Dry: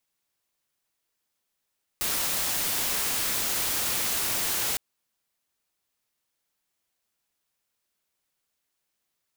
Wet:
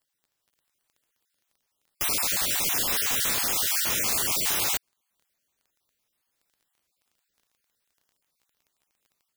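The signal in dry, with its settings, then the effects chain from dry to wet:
noise white, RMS −27.5 dBFS 2.76 s
time-frequency cells dropped at random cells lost 31%
automatic gain control gain up to 3.5 dB
surface crackle 12 per second −50 dBFS

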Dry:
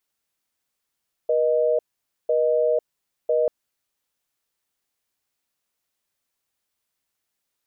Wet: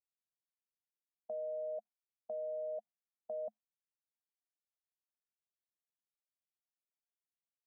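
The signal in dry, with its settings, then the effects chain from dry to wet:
call progress tone busy tone, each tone −20 dBFS 2.19 s
noise gate with hold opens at −16 dBFS
brickwall limiter −23 dBFS
pair of resonant band-passes 390 Hz, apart 1.7 octaves

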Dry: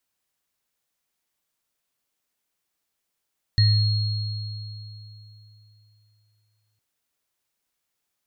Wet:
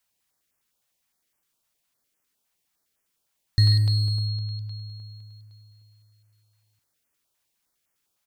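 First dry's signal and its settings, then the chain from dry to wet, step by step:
inharmonic partials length 3.21 s, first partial 106 Hz, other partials 1,870/4,280 Hz, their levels −18/−7 dB, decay 3.31 s, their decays 0.46/3.13 s, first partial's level −14 dB
in parallel at −6 dB: hard clipping −24.5 dBFS
on the sum: far-end echo of a speakerphone 140 ms, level −8 dB
notch on a step sequencer 9.8 Hz 330–3,900 Hz

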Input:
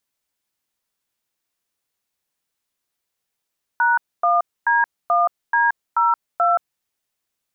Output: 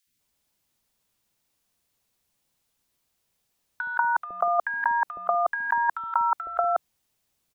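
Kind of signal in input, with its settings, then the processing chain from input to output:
touch tones "#1D1D02", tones 175 ms, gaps 258 ms, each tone −16.5 dBFS
low-shelf EQ 400 Hz +7 dB
compressor whose output falls as the input rises −19 dBFS, ratio −0.5
three-band delay without the direct sound highs, lows, mids 70/190 ms, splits 360/1,600 Hz

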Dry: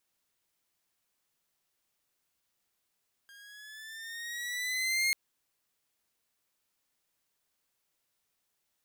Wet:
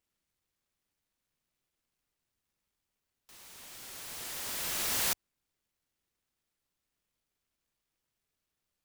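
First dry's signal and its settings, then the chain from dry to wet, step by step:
pitch glide with a swell saw, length 1.84 s, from 1,610 Hz, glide +5 semitones, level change +27 dB, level −22 dB
low-pass filter 4,500 Hz 12 dB per octave
low-shelf EQ 86 Hz +8.5 dB
short delay modulated by noise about 2,100 Hz, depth 0.4 ms

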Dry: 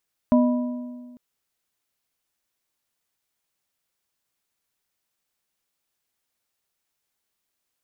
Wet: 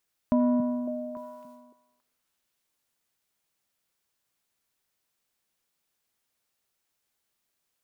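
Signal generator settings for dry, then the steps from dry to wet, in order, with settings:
struck metal plate, length 0.85 s, lowest mode 246 Hz, modes 3, decay 1.69 s, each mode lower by 6.5 dB, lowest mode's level −13 dB
transient designer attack −4 dB, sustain +11 dB
downward compressor, threshold −20 dBFS
echo through a band-pass that steps 277 ms, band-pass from 180 Hz, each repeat 1.4 octaves, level −3.5 dB

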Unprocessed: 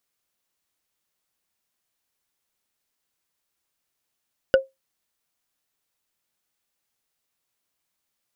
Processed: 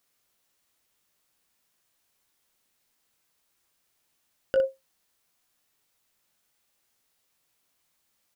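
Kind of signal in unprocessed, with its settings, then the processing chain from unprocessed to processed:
struck wood, lowest mode 534 Hz, decay 0.18 s, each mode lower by 6.5 dB, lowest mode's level −8 dB
compressor whose output falls as the input rises −23 dBFS, ratio −1
ambience of single reflections 19 ms −8.5 dB, 60 ms −8 dB

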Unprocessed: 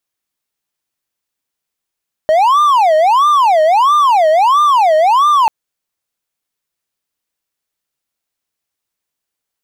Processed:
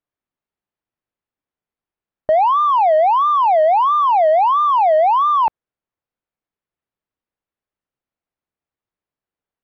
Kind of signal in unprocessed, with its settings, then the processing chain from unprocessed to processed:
siren wail 619–1,200 Hz 1.5 per second triangle −5 dBFS 3.19 s
head-to-tape spacing loss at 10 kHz 42 dB

